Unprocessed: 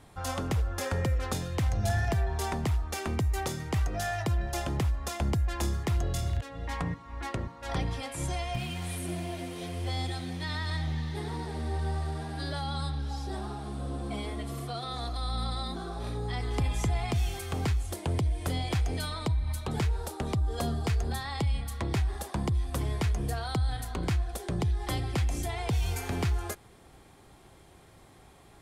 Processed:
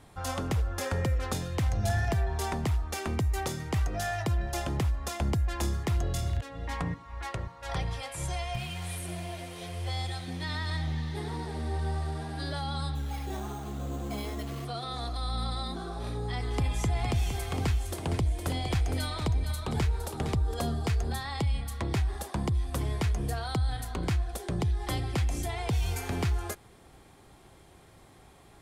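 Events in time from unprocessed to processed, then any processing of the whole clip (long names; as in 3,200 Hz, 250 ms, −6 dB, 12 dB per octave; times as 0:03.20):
0:07.04–0:10.28: parametric band 270 Hz −13 dB 0.71 octaves
0:12.95–0:14.65: bad sample-rate conversion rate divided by 6×, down none, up hold
0:16.50–0:20.54: single-tap delay 462 ms −8 dB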